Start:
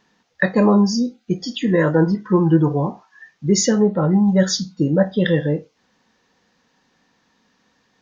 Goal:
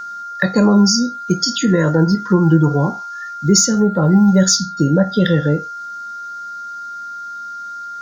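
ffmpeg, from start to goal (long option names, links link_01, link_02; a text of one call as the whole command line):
ffmpeg -i in.wav -filter_complex "[0:a]aexciter=amount=6.9:drive=4.5:freq=4300,acrossover=split=210[link_01][link_02];[link_02]acompressor=threshold=-22dB:ratio=3[link_03];[link_01][link_03]amix=inputs=2:normalize=0,aeval=exprs='val(0)+0.0251*sin(2*PI*1400*n/s)':channel_layout=same,volume=5.5dB" out.wav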